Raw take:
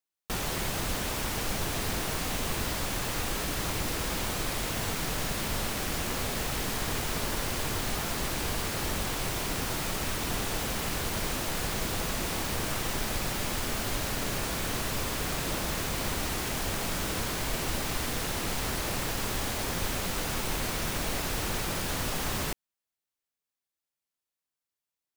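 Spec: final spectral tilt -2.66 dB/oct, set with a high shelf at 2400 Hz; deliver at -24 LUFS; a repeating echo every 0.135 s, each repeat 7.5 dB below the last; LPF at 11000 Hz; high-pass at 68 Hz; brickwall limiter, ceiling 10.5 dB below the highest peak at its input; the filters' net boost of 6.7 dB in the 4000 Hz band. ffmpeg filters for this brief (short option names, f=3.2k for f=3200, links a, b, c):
-af "highpass=68,lowpass=11k,highshelf=f=2.4k:g=5,equalizer=f=4k:t=o:g=4,alimiter=level_in=2.5dB:limit=-24dB:level=0:latency=1,volume=-2.5dB,aecho=1:1:135|270|405|540|675:0.422|0.177|0.0744|0.0312|0.0131,volume=9dB"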